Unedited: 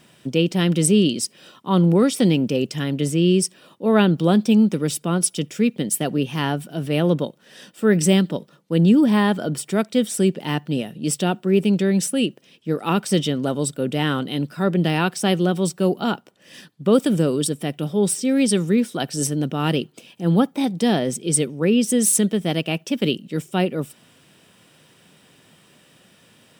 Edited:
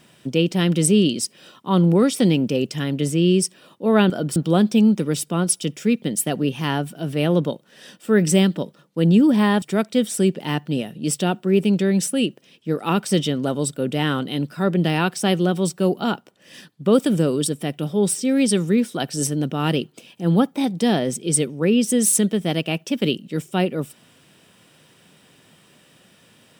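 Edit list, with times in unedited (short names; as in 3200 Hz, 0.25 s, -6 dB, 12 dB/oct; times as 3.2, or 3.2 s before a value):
9.36–9.62 move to 4.1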